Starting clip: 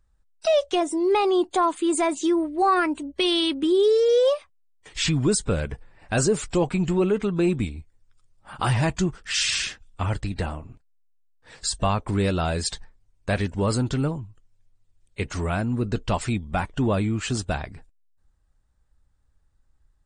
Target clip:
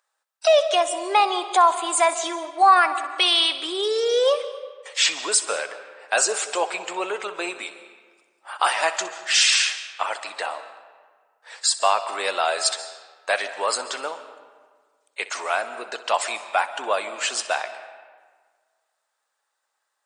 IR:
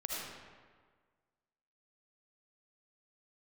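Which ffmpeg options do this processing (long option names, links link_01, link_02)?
-filter_complex "[0:a]highpass=frequency=610:width=0.5412,highpass=frequency=610:width=1.3066,asplit=2[link_01][link_02];[1:a]atrim=start_sample=2205,adelay=63[link_03];[link_02][link_03]afir=irnorm=-1:irlink=0,volume=-13.5dB[link_04];[link_01][link_04]amix=inputs=2:normalize=0,volume=6.5dB"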